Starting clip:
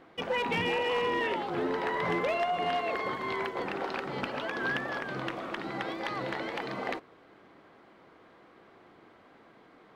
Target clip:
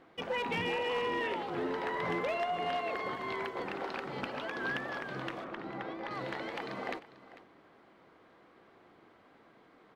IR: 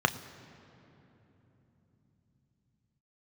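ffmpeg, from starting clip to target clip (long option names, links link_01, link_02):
-filter_complex "[0:a]asettb=1/sr,asplit=3[link_01][link_02][link_03];[link_01]atrim=end=5.444[link_04];[link_02]atrim=start=5.44:end=6.11,asetpts=PTS-STARTPTS,afade=type=in:duration=0.004:curve=qsin,afade=type=out:start_time=0.666:duration=0.004:curve=qsin,lowpass=frequency=1600:poles=1[link_05];[link_03]atrim=start=6.106[link_06];[link_04][link_05]acrossfade=duration=0.004:curve1=hsin:curve2=qsin[link_07];[link_07][link_06]acrossfade=duration=0.004:curve1=qsin:curve2=hsin,aecho=1:1:446:0.141,volume=-4dB"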